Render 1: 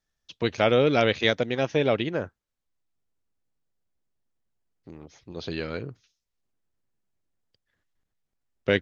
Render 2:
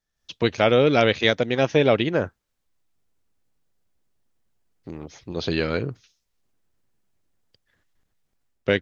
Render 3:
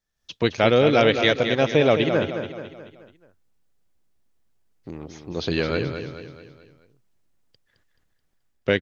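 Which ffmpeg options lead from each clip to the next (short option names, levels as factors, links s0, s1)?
-af "dynaudnorm=f=130:g=3:m=3.16,volume=0.794"
-af "aecho=1:1:215|430|645|860|1075:0.398|0.187|0.0879|0.0413|0.0194"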